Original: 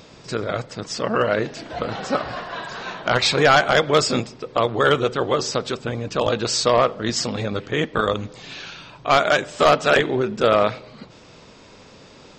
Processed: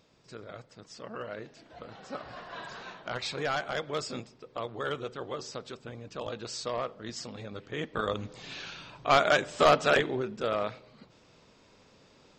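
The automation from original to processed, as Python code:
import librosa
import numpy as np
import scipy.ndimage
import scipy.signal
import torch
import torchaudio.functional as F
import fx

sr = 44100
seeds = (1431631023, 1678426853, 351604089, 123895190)

y = fx.gain(x, sr, db=fx.line((1.99, -19.5), (2.66, -9.5), (3.11, -16.5), (7.48, -16.5), (8.45, -6.0), (9.81, -6.0), (10.44, -13.5)))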